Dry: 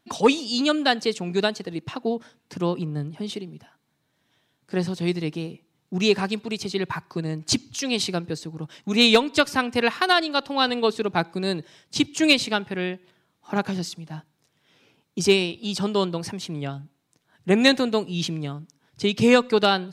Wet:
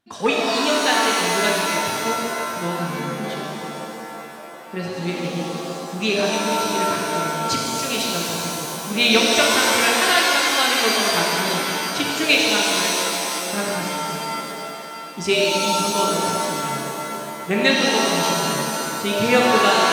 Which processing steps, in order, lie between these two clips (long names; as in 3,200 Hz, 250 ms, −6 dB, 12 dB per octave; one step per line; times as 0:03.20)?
feedback echo with a band-pass in the loop 923 ms, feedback 71%, band-pass 890 Hz, level −12 dB
dynamic equaliser 2,100 Hz, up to +7 dB, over −37 dBFS, Q 0.81
reverb with rising layers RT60 2.7 s, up +7 semitones, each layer −2 dB, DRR −2.5 dB
level −5.5 dB